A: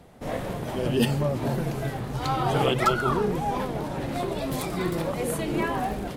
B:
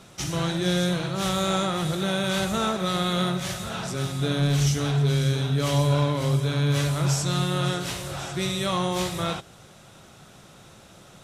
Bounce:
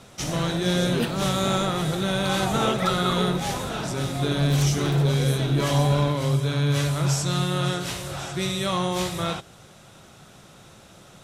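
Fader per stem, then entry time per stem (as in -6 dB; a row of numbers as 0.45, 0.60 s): -4.0, +0.5 dB; 0.00, 0.00 s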